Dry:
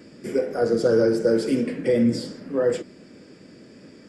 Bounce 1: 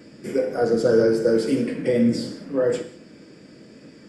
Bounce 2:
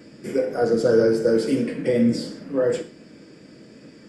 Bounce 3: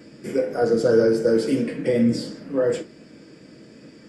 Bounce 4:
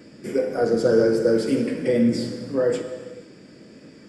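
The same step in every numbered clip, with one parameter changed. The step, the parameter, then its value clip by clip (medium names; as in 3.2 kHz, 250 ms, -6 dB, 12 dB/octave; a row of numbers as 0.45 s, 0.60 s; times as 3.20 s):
gated-style reverb, gate: 230 ms, 150 ms, 80 ms, 530 ms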